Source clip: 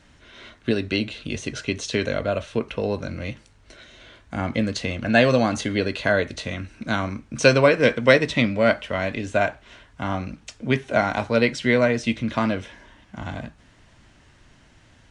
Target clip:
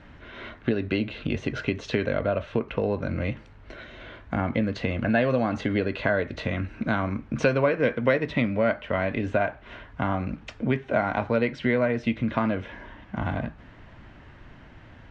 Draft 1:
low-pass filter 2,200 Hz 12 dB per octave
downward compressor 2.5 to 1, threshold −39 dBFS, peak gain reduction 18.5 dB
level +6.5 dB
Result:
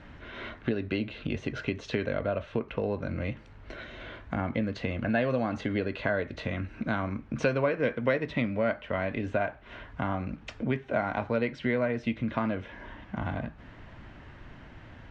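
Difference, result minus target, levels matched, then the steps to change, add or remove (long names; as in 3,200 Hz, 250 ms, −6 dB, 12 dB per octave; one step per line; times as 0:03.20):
downward compressor: peak gain reduction +4.5 dB
change: downward compressor 2.5 to 1, threshold −31.5 dBFS, peak gain reduction 14 dB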